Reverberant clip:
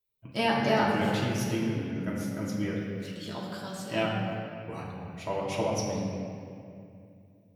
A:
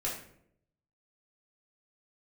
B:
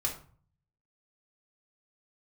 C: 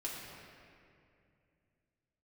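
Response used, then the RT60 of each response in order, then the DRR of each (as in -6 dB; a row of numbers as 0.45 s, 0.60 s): C; 0.70 s, 0.45 s, 2.5 s; -5.5 dB, -1.5 dB, -5.5 dB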